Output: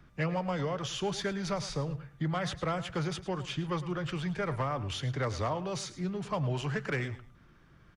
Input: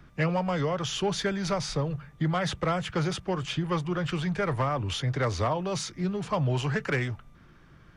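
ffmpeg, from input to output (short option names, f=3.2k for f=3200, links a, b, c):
-af "aecho=1:1:108|216:0.178|0.0391,volume=-5dB"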